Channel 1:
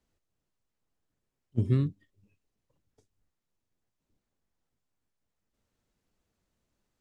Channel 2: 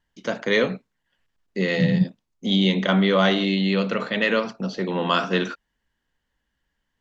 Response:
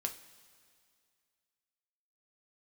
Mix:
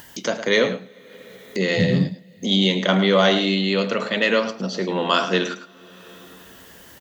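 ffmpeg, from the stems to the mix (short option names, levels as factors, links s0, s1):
-filter_complex "[0:a]adelay=200,volume=1[s0];[1:a]aemphasis=mode=production:type=75fm,volume=0.708,asplit=3[s1][s2][s3];[s2]volume=0.266[s4];[s3]volume=0.299[s5];[2:a]atrim=start_sample=2205[s6];[s4][s6]afir=irnorm=-1:irlink=0[s7];[s5]aecho=0:1:107:1[s8];[s0][s1][s7][s8]amix=inputs=4:normalize=0,highpass=83,equalizer=f=530:w=0.58:g=4.5,acompressor=mode=upward:threshold=0.0708:ratio=2.5"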